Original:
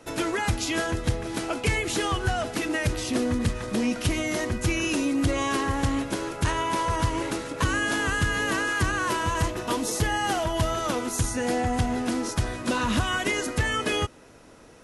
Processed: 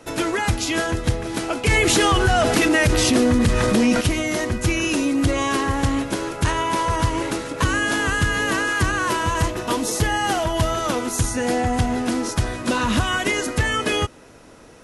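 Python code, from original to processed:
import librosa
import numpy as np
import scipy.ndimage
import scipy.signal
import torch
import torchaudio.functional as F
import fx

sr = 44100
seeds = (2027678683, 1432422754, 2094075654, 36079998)

y = fx.env_flatten(x, sr, amount_pct=70, at=(1.68, 4.01))
y = y * 10.0 ** (4.5 / 20.0)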